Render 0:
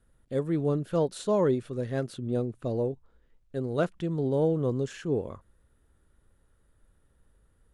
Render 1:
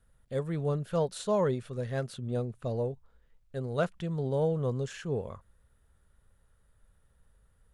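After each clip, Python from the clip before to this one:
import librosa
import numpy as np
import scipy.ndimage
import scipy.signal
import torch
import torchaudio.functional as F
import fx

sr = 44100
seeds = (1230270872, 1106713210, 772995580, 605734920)

y = fx.peak_eq(x, sr, hz=310.0, db=-12.0, octaves=0.64)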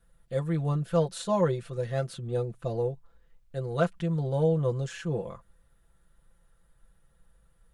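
y = x + 0.85 * np.pad(x, (int(5.9 * sr / 1000.0), 0))[:len(x)]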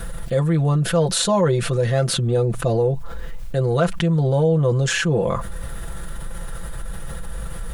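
y = fx.env_flatten(x, sr, amount_pct=70)
y = y * librosa.db_to_amplitude(5.0)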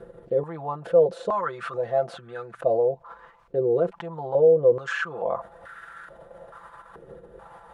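y = fx.filter_held_bandpass(x, sr, hz=2.3, low_hz=420.0, high_hz=1500.0)
y = y * librosa.db_to_amplitude(4.5)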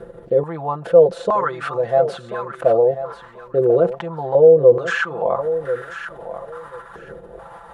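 y = fx.echo_feedback(x, sr, ms=1037, feedback_pct=18, wet_db=-12.0)
y = y * librosa.db_to_amplitude(7.0)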